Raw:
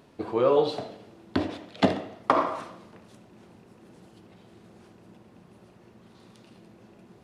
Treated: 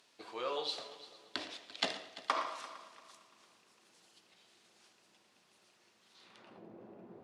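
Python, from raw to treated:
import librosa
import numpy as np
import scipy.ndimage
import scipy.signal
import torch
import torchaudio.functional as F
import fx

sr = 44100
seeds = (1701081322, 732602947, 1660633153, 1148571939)

y = fx.echo_heads(x, sr, ms=114, heads='first and third', feedback_pct=49, wet_db=-17.5)
y = fx.filter_sweep_bandpass(y, sr, from_hz=5700.0, to_hz=500.0, start_s=6.12, end_s=6.66, q=0.83)
y = y * librosa.db_to_amplitude(2.0)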